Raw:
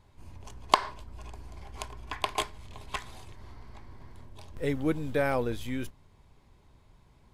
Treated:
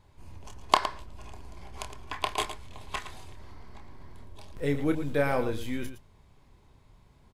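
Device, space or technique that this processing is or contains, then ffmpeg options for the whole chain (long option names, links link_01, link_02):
slapback doubling: -filter_complex "[0:a]asplit=3[link_01][link_02][link_03];[link_02]adelay=28,volume=-8dB[link_04];[link_03]adelay=113,volume=-11dB[link_05];[link_01][link_04][link_05]amix=inputs=3:normalize=0"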